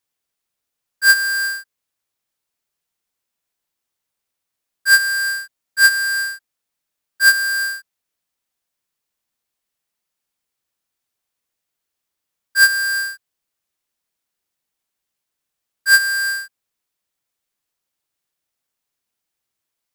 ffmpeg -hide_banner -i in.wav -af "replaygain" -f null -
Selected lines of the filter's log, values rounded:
track_gain = +4.8 dB
track_peak = 0.322